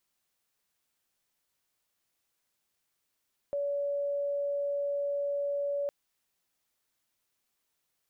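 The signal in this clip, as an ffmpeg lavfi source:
-f lavfi -i "sine=f=569:d=2.36:r=44100,volume=-10.44dB"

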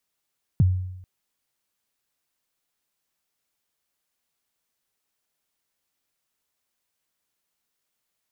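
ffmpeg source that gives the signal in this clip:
-f lavfi -i "aevalsrc='0.251*pow(10,-3*t/0.87)*sin(2*PI*(180*0.025/log(92/180)*(exp(log(92/180)*min(t,0.025)/0.025)-1)+92*max(t-0.025,0)))':d=0.44:s=44100"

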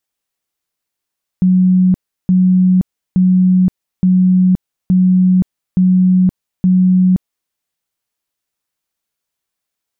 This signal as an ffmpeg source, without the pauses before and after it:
-f lavfi -i "aevalsrc='0.447*sin(2*PI*184*mod(t,0.87))*lt(mod(t,0.87),96/184)':d=6.09:s=44100"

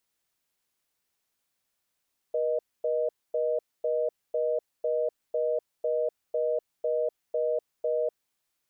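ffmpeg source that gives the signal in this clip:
-f lavfi -i "aevalsrc='0.0447*(sin(2*PI*480*t)+sin(2*PI*620*t))*clip(min(mod(t,0.5),0.25-mod(t,0.5))/0.005,0,1)':d=5.88:s=44100"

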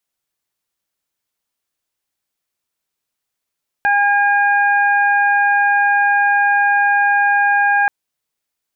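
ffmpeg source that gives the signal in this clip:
-f lavfi -i "aevalsrc='0.188*sin(2*PI*812*t)+0.211*sin(2*PI*1624*t)+0.0447*sin(2*PI*2436*t)':d=4.03:s=44100"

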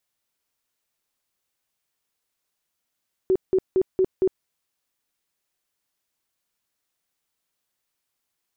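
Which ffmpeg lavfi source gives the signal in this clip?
-f lavfi -i "aevalsrc='0.168*sin(2*PI*376*mod(t,0.23))*lt(mod(t,0.23),21/376)':d=1.15:s=44100"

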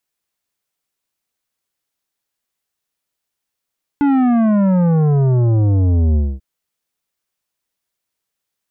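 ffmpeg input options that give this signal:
-f lavfi -i "aevalsrc='0.251*clip((2.39-t)/0.24,0,1)*tanh(3.55*sin(2*PI*290*2.39/log(65/290)*(exp(log(65/290)*t/2.39)-1)))/tanh(3.55)':d=2.39:s=44100"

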